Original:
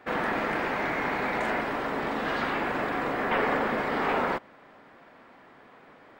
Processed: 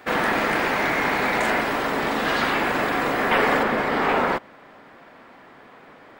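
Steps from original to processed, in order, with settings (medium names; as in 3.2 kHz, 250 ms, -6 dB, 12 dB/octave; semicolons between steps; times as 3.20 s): treble shelf 3.9 kHz +11.5 dB, from 3.63 s +3 dB; trim +5.5 dB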